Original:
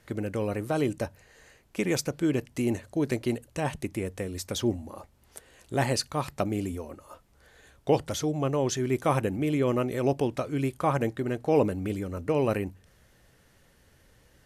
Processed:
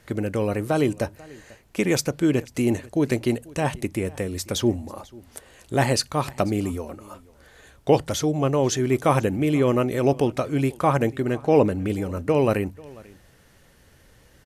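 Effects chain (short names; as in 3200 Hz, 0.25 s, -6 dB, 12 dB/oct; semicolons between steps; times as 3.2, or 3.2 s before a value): 11.34–11.9 high shelf 10000 Hz -8.5 dB; on a send: echo 0.491 s -23 dB; on the sum: gain +5.5 dB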